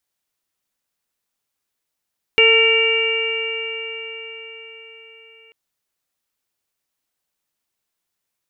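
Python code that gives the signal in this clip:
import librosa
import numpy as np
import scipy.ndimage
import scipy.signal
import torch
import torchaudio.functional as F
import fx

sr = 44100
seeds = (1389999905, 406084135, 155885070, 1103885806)

y = fx.additive_stiff(sr, length_s=3.14, hz=448.0, level_db=-14.5, upper_db=(-16.0, -14, -15, 1.5, 2.5), decay_s=4.94, stiffness=0.0023)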